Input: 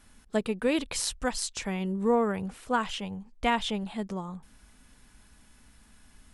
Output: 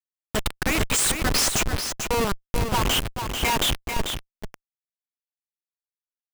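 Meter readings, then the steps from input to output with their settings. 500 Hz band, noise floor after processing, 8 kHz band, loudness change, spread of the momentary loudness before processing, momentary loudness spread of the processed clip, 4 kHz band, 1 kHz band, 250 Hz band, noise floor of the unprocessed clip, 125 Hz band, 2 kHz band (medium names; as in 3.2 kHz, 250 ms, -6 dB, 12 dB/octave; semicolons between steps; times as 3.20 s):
0.0 dB, under -85 dBFS, +11.5 dB, +6.0 dB, 10 LU, 9 LU, +11.0 dB, +4.0 dB, -1.0 dB, -59 dBFS, +9.0 dB, +8.0 dB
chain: drifting ripple filter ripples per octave 0.76, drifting +1.5 Hz, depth 13 dB; high-pass 1.1 kHz 6 dB/octave; tilt EQ +4 dB/octave; Schmitt trigger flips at -28 dBFS; delay 441 ms -7 dB; buffer glitch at 4.32 s, samples 512, times 8; trim +8 dB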